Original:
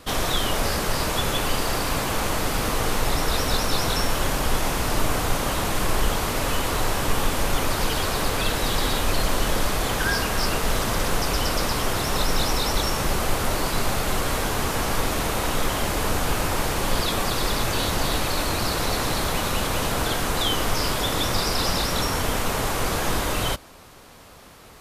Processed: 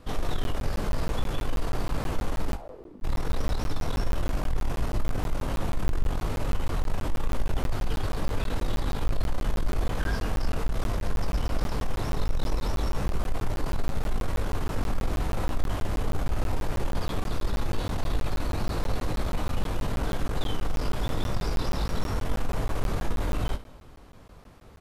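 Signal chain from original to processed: tilt -2.5 dB/oct; soft clip -11.5 dBFS, distortion -10 dB; 2.54–3.02 band-pass 840 Hz -> 220 Hz, Q 5.1; early reflections 20 ms -7.5 dB, 63 ms -15.5 dB; on a send at -19 dB: reverb RT60 2.8 s, pre-delay 16 ms; on the sum: crackling interface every 0.16 s, samples 512, zero, from 0.44; gain -8.5 dB

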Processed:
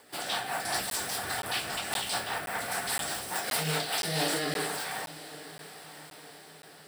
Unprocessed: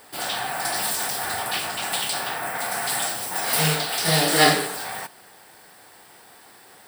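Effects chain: 0.64–3.3 octaver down 2 oct, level -2 dB; HPF 110 Hz 6 dB/oct; high shelf 11000 Hz -4.5 dB; limiter -15.5 dBFS, peak gain reduction 11 dB; rotary speaker horn 5 Hz, later 0.8 Hz, at 3.76; diffused feedback echo 0.98 s, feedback 51%, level -15.5 dB; crackling interface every 0.52 s, samples 512, zero, from 0.9; gain -2 dB

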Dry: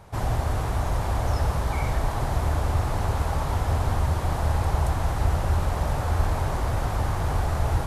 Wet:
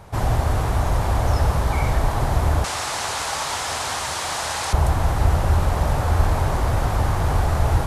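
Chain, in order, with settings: 2.64–4.73 weighting filter ITU-R 468; gain +5 dB

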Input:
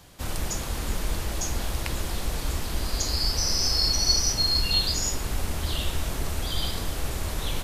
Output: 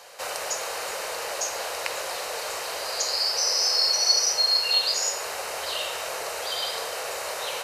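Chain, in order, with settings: resonant low shelf 370 Hz -10.5 dB, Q 3; notch 3400 Hz, Q 7.2; reverb RT60 0.80 s, pre-delay 44 ms, DRR 10.5 dB; in parallel at +1.5 dB: compressor, threshold -37 dBFS, peak gain reduction 18 dB; on the sum: weighting filter A

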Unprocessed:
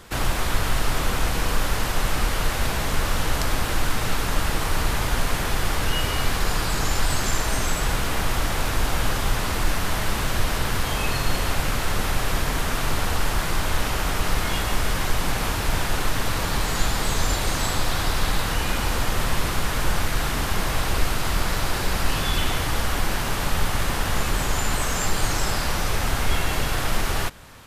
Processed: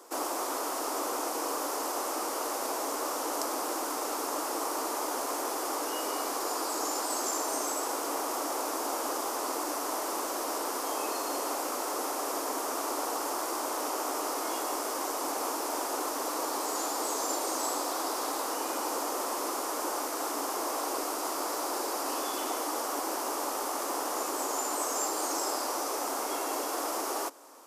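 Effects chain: elliptic high-pass 290 Hz, stop band 50 dB; band shelf 2500 Hz -12.5 dB; gain -2 dB

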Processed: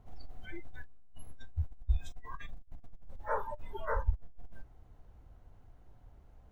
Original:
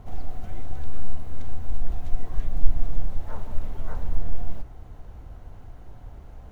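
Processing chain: negative-ratio compressor -18 dBFS, ratio -0.5; spectral noise reduction 25 dB; gain +6 dB

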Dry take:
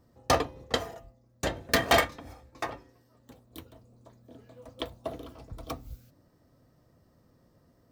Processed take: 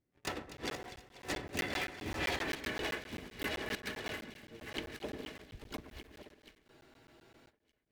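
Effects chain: regenerating reverse delay 0.56 s, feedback 69%, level -10 dB; Doppler pass-by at 2.4, 29 m/s, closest 3.1 m; tone controls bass -7 dB, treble -8 dB; compressor 8:1, threshold -58 dBFS, peak gain reduction 28 dB; sample leveller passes 3; harmoniser -5 st -6 dB, +5 st -7 dB; band shelf 830 Hz -9 dB; on a send: split-band echo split 2000 Hz, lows 0.115 s, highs 0.244 s, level -12 dB; on the sum: spectral freeze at 6.68, 0.82 s; crackling interface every 0.13 s, samples 512, zero, from 0.57; gain +16 dB

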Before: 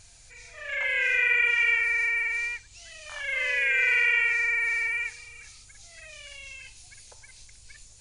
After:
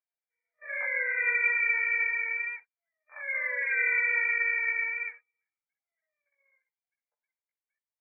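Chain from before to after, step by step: gate -39 dBFS, range -35 dB; chorus voices 4, 0.29 Hz, delay 17 ms, depth 2.8 ms; brick-wall FIR band-pass 420–2400 Hz

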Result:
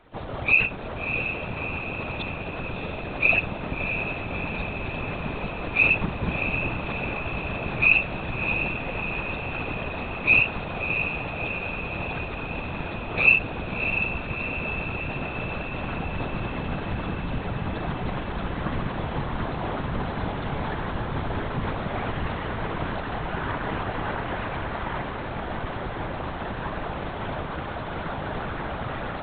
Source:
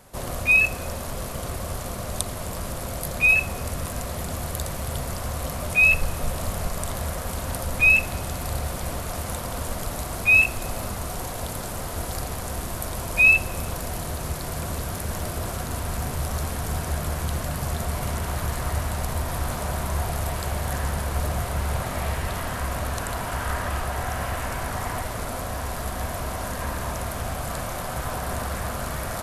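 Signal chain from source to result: LPC vocoder at 8 kHz whisper; whisperiser; diffused feedback echo 0.649 s, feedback 66%, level -7 dB; gain -2.5 dB

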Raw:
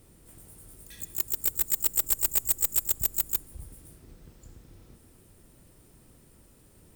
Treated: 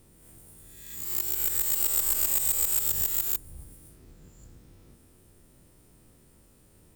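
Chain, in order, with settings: spectral swells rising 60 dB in 0.98 s; gain -4 dB

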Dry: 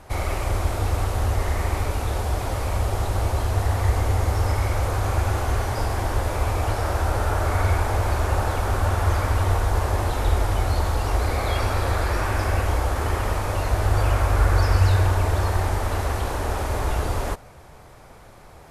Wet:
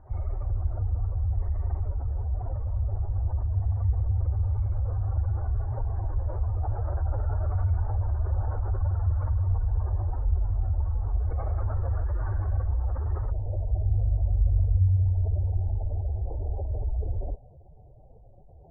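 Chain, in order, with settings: spectral contrast raised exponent 2.1; steep low-pass 1900 Hz 48 dB/oct, from 13.3 s 760 Hz; gain -4 dB

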